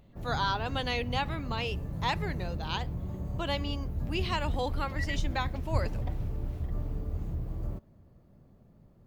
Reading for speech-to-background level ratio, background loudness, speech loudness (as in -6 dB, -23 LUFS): 2.0 dB, -36.5 LUFS, -34.5 LUFS